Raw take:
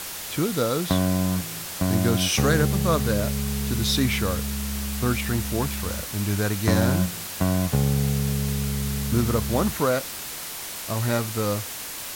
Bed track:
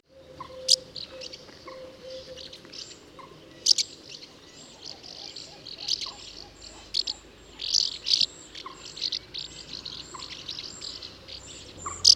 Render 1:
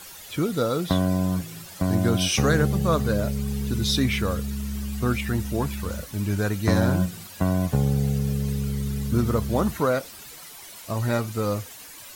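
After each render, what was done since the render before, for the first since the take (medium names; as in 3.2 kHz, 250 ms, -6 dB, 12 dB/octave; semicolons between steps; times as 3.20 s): noise reduction 12 dB, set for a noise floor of -35 dBFS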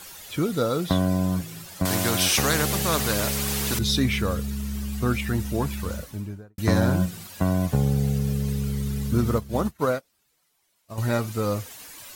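1.85–3.79 s: spectrum-flattening compressor 2:1; 5.88–6.58 s: studio fade out; 9.38–10.98 s: upward expansion 2.5:1, over -38 dBFS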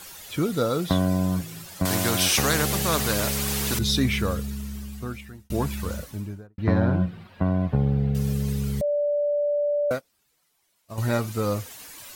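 4.25–5.50 s: fade out; 6.47–8.15 s: distance through air 420 m; 8.81–9.91 s: bleep 584 Hz -20.5 dBFS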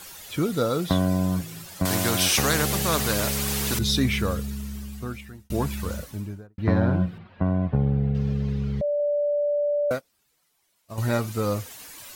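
7.18–9.00 s: distance through air 240 m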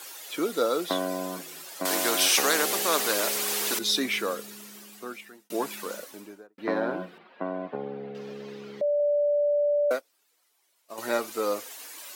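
high-pass 310 Hz 24 dB/octave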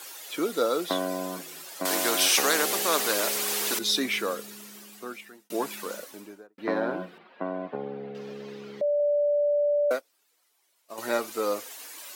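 no audible change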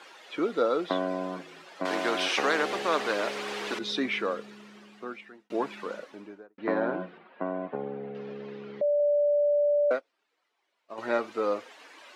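low-pass 2.7 kHz 12 dB/octave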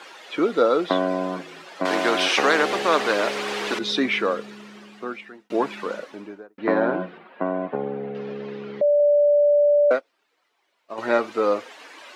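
trim +7 dB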